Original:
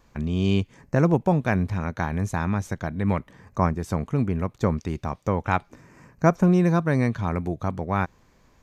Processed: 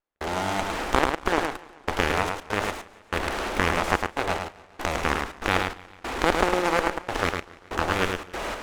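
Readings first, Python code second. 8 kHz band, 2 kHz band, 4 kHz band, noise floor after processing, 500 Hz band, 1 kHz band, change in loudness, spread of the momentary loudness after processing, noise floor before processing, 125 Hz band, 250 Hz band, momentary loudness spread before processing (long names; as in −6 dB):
+8.5 dB, +7.0 dB, +11.5 dB, −53 dBFS, −0.5 dB, +3.5 dB, −2.0 dB, 9 LU, −60 dBFS, −12.0 dB, −8.0 dB, 9 LU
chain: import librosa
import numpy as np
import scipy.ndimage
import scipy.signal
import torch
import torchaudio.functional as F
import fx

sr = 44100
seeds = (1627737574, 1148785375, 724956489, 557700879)

p1 = fx.bin_compress(x, sr, power=0.2)
p2 = np.abs(p1)
p3 = fx.cheby_harmonics(p2, sr, harmonics=(8,), levels_db=(-20,), full_scale_db=2.5)
p4 = fx.step_gate(p3, sr, bpm=72, pattern='.xxxx.x..xx.x.', floor_db=-60.0, edge_ms=4.5)
p5 = fx.peak_eq(p4, sr, hz=130.0, db=-12.5, octaves=1.1)
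p6 = p5 + fx.echo_single(p5, sr, ms=106, db=-5.0, dry=0)
p7 = fx.echo_warbled(p6, sr, ms=142, feedback_pct=62, rate_hz=2.8, cents=118, wet_db=-21)
y = p7 * 10.0 ** (-1.0 / 20.0)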